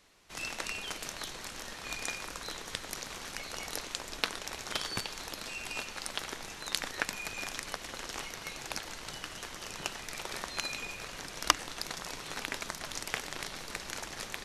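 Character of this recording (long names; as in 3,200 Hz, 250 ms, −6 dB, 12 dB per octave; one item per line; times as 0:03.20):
background noise floor −46 dBFS
spectral slope −2.5 dB per octave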